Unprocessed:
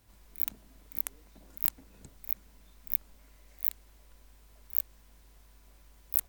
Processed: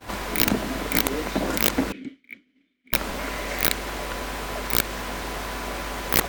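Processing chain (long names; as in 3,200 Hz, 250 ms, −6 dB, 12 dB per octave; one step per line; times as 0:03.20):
0:01.92–0:02.93: formant filter i
downward expander −59 dBFS
mid-hump overdrive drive 30 dB, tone 1,100 Hz, clips at −2.5 dBFS
dynamic equaliser 810 Hz, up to −4 dB, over −52 dBFS, Q 1.2
boost into a limiter +21 dB
level −2 dB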